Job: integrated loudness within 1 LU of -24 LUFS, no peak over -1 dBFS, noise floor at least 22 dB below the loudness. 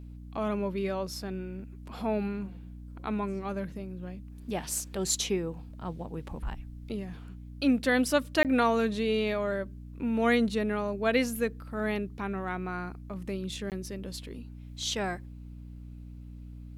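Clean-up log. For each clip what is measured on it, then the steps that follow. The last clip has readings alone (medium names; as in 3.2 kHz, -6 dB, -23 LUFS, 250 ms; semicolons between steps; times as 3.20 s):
dropouts 2; longest dropout 18 ms; hum 60 Hz; highest harmonic 300 Hz; hum level -42 dBFS; loudness -31.0 LUFS; peak level -10.5 dBFS; loudness target -24.0 LUFS
-> interpolate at 8.43/13.70 s, 18 ms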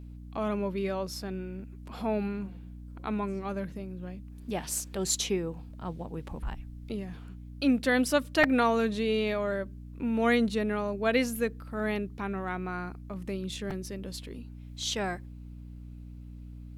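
dropouts 0; hum 60 Hz; highest harmonic 300 Hz; hum level -42 dBFS
-> de-hum 60 Hz, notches 5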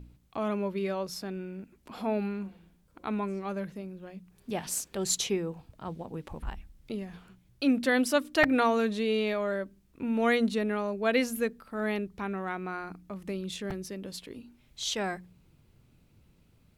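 hum not found; loudness -31.0 LUFS; peak level -10.0 dBFS; loudness target -24.0 LUFS
-> trim +7 dB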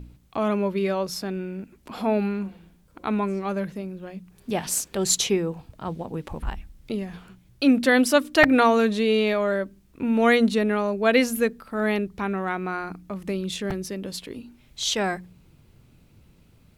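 loudness -24.0 LUFS; peak level -3.0 dBFS; noise floor -57 dBFS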